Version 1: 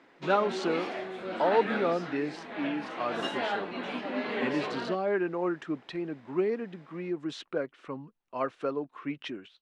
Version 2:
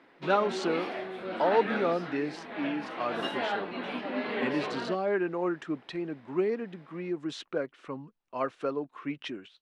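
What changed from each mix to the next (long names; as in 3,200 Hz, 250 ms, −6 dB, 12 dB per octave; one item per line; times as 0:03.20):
background: add parametric band 7,000 Hz −10.5 dB 0.71 octaves
master: add high-shelf EQ 7,200 Hz +5 dB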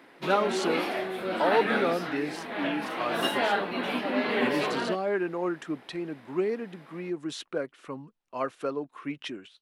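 background +5.0 dB
master: remove high-frequency loss of the air 86 metres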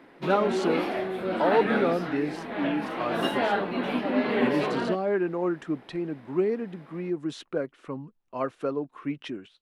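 master: add spectral tilt −2 dB per octave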